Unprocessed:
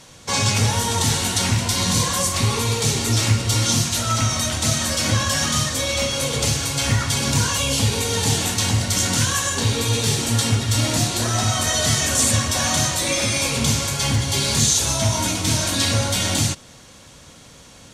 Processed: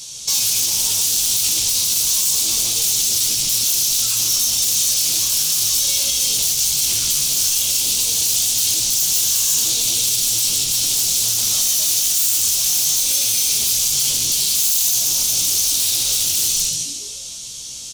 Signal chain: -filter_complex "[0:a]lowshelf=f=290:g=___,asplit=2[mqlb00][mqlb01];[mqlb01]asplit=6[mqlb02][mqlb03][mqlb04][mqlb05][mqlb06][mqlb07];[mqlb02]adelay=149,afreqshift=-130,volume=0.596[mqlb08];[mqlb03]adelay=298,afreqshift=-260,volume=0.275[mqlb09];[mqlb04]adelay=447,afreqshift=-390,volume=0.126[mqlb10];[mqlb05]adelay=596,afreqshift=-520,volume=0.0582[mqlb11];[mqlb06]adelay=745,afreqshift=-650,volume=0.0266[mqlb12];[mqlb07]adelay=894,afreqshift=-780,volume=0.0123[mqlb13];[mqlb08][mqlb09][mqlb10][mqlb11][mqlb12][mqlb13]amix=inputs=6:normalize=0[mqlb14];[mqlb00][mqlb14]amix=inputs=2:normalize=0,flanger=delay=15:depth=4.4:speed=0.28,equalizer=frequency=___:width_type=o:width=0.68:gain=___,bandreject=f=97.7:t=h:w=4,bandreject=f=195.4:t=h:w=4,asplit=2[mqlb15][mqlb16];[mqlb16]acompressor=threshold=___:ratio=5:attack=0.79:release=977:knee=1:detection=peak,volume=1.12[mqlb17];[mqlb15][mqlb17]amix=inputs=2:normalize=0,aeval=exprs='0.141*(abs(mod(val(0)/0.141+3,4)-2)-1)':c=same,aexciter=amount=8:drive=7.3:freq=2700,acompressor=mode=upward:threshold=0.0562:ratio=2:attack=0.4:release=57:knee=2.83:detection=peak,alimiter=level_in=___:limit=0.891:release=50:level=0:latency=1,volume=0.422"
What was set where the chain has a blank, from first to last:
5, 5900, 4, 0.0501, 0.562